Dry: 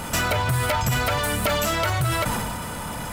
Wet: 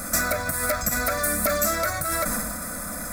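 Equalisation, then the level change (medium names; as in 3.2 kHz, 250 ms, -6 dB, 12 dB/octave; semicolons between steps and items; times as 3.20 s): treble shelf 5 kHz +8 dB; static phaser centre 600 Hz, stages 8; 0.0 dB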